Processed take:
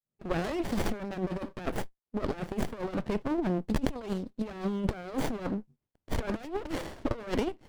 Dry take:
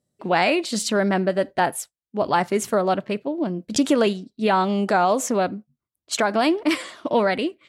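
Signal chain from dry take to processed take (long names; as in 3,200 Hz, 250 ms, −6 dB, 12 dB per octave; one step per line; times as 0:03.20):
fade in at the beginning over 0.71 s
compressor whose output falls as the input rises −25 dBFS, ratio −0.5
windowed peak hold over 33 samples
level −3.5 dB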